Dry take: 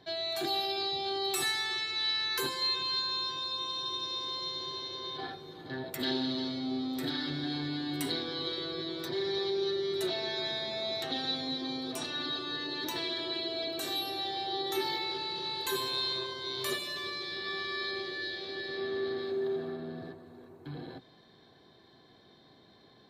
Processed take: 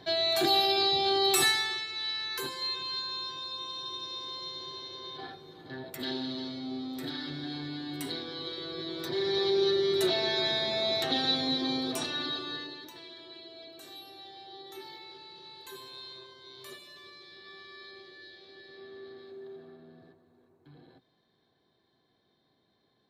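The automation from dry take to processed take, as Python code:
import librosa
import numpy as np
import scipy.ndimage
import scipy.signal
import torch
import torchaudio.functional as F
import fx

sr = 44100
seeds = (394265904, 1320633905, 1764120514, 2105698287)

y = fx.gain(x, sr, db=fx.line((1.44, 7.0), (1.87, -3.0), (8.54, -3.0), (9.57, 5.5), (11.78, 5.5), (12.58, -1.5), (12.91, -13.0)))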